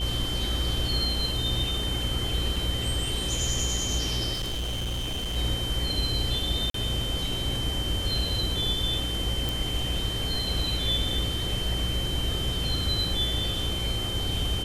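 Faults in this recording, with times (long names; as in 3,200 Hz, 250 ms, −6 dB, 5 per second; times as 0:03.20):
mains buzz 60 Hz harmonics 9 −33 dBFS
whistle 3,100 Hz −31 dBFS
0:02.56: drop-out 4.4 ms
0:04.33–0:05.37: clipping −27 dBFS
0:06.70–0:06.74: drop-out 43 ms
0:09.49: click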